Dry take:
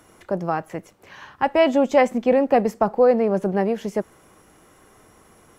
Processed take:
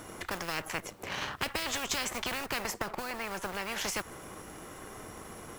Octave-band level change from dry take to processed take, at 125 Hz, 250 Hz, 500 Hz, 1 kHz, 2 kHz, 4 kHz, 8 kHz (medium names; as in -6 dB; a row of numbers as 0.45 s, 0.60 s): -12.5 dB, -19.5 dB, -22.0 dB, -13.5 dB, -3.5 dB, +3.0 dB, no reading